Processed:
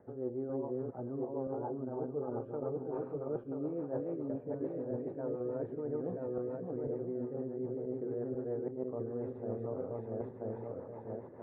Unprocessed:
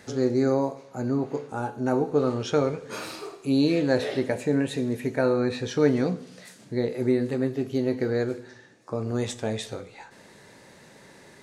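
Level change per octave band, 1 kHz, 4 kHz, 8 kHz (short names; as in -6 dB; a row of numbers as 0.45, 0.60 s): -13.0 dB, under -40 dB, under -35 dB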